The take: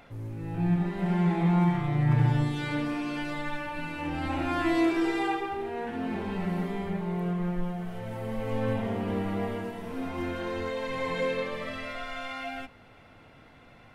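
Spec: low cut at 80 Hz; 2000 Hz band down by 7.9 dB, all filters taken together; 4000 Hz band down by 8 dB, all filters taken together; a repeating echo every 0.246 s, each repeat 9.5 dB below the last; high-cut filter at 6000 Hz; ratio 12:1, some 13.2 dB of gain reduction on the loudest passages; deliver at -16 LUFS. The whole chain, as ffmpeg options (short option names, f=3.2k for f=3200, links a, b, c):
-af "highpass=80,lowpass=6k,equalizer=f=2k:t=o:g=-8.5,equalizer=f=4k:t=o:g=-6.5,acompressor=threshold=-33dB:ratio=12,aecho=1:1:246|492|738|984:0.335|0.111|0.0365|0.012,volume=21.5dB"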